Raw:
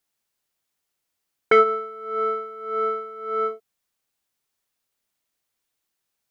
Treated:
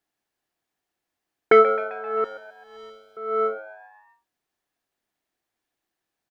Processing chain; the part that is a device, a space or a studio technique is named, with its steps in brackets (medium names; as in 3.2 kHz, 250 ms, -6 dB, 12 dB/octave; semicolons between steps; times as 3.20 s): inside a helmet (treble shelf 4.2 kHz -9 dB; small resonant body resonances 320/720/1700 Hz, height 7 dB, ringing for 20 ms); 2.24–3.17 s: FFT filter 100 Hz 0 dB, 230 Hz -18 dB, 1.8 kHz -24 dB, 3.4 kHz +8 dB; frequency-shifting echo 131 ms, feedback 54%, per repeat +100 Hz, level -16 dB